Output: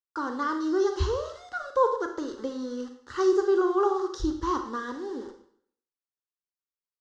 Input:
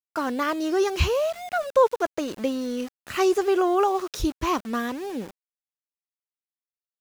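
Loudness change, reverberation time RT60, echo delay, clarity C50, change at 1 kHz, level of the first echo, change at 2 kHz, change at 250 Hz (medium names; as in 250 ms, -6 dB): -3.0 dB, 0.60 s, no echo, 8.0 dB, -3.5 dB, no echo, -5.5 dB, -2.5 dB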